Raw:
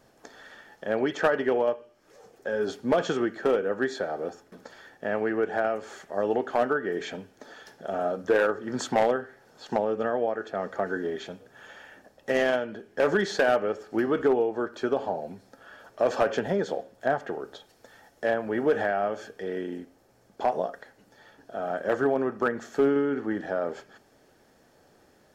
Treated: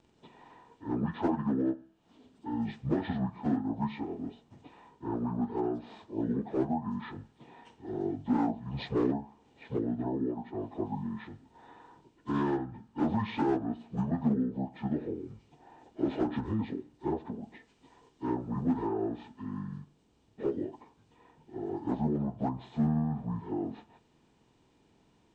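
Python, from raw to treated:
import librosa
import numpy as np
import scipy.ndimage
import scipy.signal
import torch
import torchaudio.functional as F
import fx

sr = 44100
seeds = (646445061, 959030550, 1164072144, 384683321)

y = fx.pitch_bins(x, sr, semitones=-10.5)
y = y * 10.0 ** (-4.5 / 20.0)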